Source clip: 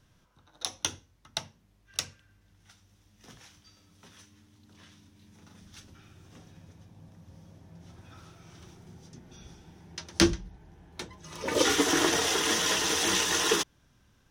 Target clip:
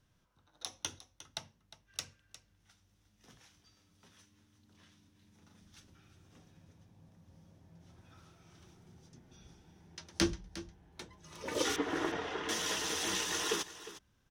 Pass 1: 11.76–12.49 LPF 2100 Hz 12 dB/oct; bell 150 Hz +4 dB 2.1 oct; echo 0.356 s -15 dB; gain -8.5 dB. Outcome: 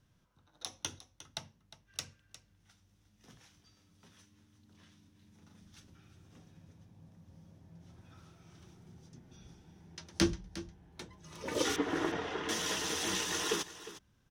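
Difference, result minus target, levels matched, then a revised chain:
125 Hz band +2.5 dB
11.76–12.49 LPF 2100 Hz 12 dB/oct; echo 0.356 s -15 dB; gain -8.5 dB

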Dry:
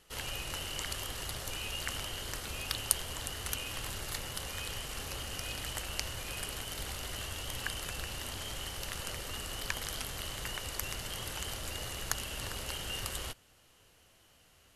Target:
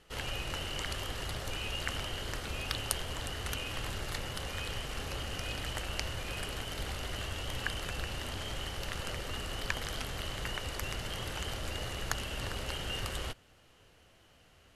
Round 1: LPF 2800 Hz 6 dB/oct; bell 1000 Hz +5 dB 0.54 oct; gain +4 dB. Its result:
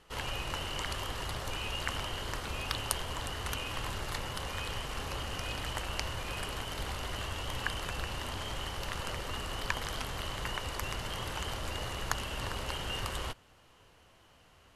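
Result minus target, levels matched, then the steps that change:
1000 Hz band +3.5 dB
change: bell 1000 Hz -2 dB 0.54 oct

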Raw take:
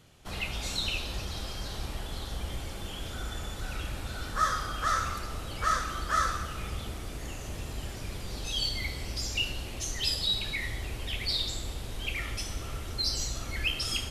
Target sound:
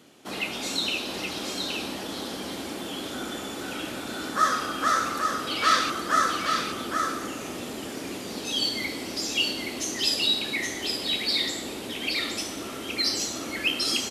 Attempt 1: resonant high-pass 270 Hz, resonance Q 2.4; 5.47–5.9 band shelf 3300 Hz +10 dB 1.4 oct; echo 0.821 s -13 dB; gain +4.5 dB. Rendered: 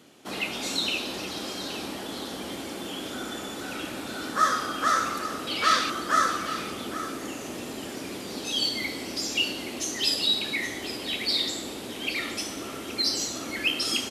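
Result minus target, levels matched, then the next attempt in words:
echo-to-direct -8 dB
resonant high-pass 270 Hz, resonance Q 2.4; 5.47–5.9 band shelf 3300 Hz +10 dB 1.4 oct; echo 0.821 s -5 dB; gain +4.5 dB

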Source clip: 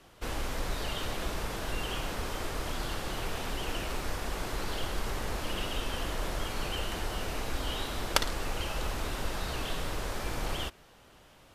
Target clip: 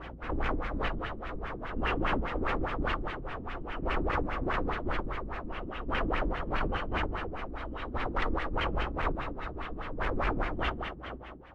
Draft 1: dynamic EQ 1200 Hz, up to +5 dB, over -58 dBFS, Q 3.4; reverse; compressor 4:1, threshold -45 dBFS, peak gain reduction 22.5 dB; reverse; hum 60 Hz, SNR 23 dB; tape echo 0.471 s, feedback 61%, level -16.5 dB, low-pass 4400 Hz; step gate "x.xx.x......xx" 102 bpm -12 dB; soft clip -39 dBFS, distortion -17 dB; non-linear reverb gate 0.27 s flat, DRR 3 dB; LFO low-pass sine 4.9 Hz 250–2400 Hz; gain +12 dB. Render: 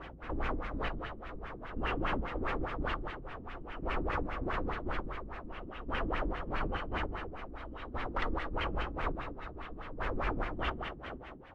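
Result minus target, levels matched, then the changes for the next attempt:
compressor: peak gain reduction +6.5 dB
change: compressor 4:1, threshold -36.5 dBFS, peak gain reduction 16 dB

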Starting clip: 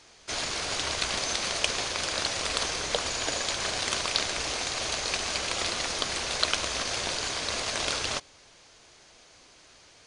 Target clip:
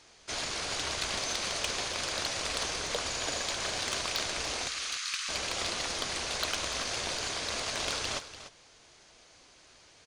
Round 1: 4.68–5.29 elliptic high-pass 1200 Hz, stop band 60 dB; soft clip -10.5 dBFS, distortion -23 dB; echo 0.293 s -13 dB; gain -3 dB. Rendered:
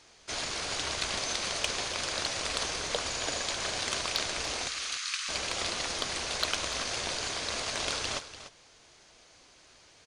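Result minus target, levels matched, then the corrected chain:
soft clip: distortion -8 dB
4.68–5.29 elliptic high-pass 1200 Hz, stop band 60 dB; soft clip -18 dBFS, distortion -16 dB; echo 0.293 s -13 dB; gain -3 dB

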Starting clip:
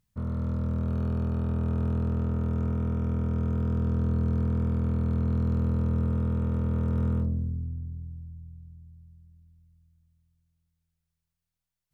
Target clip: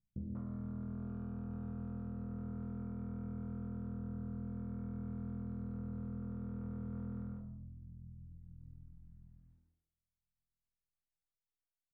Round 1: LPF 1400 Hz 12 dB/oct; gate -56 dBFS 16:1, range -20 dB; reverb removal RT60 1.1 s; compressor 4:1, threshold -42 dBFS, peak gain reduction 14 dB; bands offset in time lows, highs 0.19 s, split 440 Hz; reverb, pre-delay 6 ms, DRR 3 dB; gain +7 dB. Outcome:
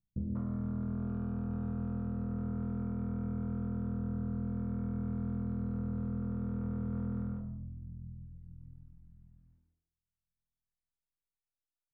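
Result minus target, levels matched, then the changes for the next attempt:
compressor: peak gain reduction -7 dB
change: compressor 4:1, threshold -51 dBFS, peak gain reduction 20.5 dB

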